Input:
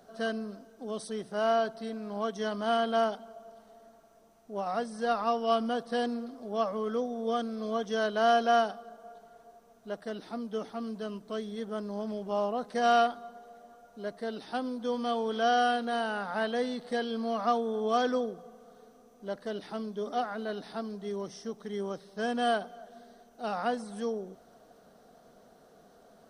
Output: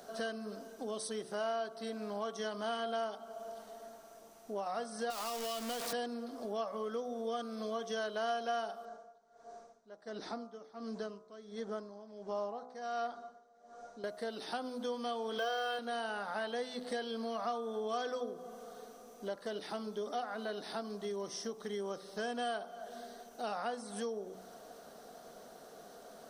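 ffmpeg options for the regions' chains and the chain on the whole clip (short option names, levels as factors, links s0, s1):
-filter_complex "[0:a]asettb=1/sr,asplit=3[s0][s1][s2];[s0]atrim=end=5.104[s3];[s1]atrim=start=5.1:end=5.93,asetpts=PTS-STARTPTS,afade=t=in:d=0.004:c=qsin,afade=t=out:st=0.826:d=0.004:c=qsin,aeval=exprs='val(0)+0.5*0.0316*sgn(val(0))':c=same,acrossover=split=200|3000[s4][s5][s6];[s5]acompressor=threshold=0.0282:ratio=6:attack=3.2:release=140:knee=2.83:detection=peak[s7];[s4][s7][s6]amix=inputs=3:normalize=0,equalizer=f=93:w=0.61:g=-12[s8];[s2]atrim=start=5.926[s9];[s3][s8]acrossfade=d=0.004:c1=hsin:c2=qsin[s10];[s10][s9]acrossfade=d=0.004:c1=qsin:c2=hsin,asettb=1/sr,asplit=3[s11][s12][s13];[s11]atrim=end=8.854[s14];[s12]atrim=start=8.85:end=14.04,asetpts=PTS-STARTPTS,afade=t=in:d=0.004:c=qsin,afade=t=out:st=5.186:d=0.004:c=qsin,lowpass=f=7100:w=0.5412,lowpass=f=7100:w=1.3066,equalizer=f=2900:w=2.5:g=-8,aeval=exprs='val(0)*pow(10,-21*(0.5-0.5*cos(2*PI*1.4*n/s))/20)':c=same[s15];[s13]atrim=start=14.036[s16];[s14][s15]acrossfade=d=0.004:c1=hsin:c2=qsin[s17];[s17][s16]acrossfade=d=0.004:c1=qsin:c2=hsin,asettb=1/sr,asplit=3[s18][s19][s20];[s18]atrim=end=15.384[s21];[s19]atrim=start=15.38:end=15.79,asetpts=PTS-STARTPTS,afade=t=in:d=0.004:c=qsin,afade=t=out:st=0.406:d=0.004:c=qsin,aecho=1:1:1.9:0.84,atrim=end_sample=18081,acrossover=split=5500[s22][s23];[s23]acompressor=threshold=0.00178:ratio=4:attack=1:release=60[s24];[s22][s24]amix=inputs=2:normalize=0,acrusher=bits=9:mode=log:mix=0:aa=0.000001[s25];[s20]atrim=start=15.786[s26];[s21][s25]acrossfade=d=0.004:c1=hsin:c2=qsin[s27];[s27][s26]acrossfade=d=0.004:c1=qsin:c2=hsin,bass=f=250:g=-8,treble=f=4000:g=4,bandreject=f=62.89:t=h:w=4,bandreject=f=125.78:t=h:w=4,bandreject=f=188.67:t=h:w=4,bandreject=f=251.56:t=h:w=4,bandreject=f=314.45:t=h:w=4,bandreject=f=377.34:t=h:w=4,bandreject=f=440.23:t=h:w=4,bandreject=f=503.12:t=h:w=4,bandreject=f=566.01:t=h:w=4,bandreject=f=628.9:t=h:w=4,bandreject=f=691.79:t=h:w=4,bandreject=f=754.68:t=h:w=4,bandreject=f=817.57:t=h:w=4,bandreject=f=880.46:t=h:w=4,bandreject=f=943.35:t=h:w=4,bandreject=f=1006.24:t=h:w=4,bandreject=f=1069.13:t=h:w=4,bandreject=f=1132.02:t=h:w=4,bandreject=f=1194.91:t=h:w=4,bandreject=f=1257.8:t=h:w=4,bandreject=f=1320.69:t=h:w=4,bandreject=f=1383.58:t=h:w=4,bandreject=f=1446.47:t=h:w=4,acompressor=threshold=0.00562:ratio=3,volume=2"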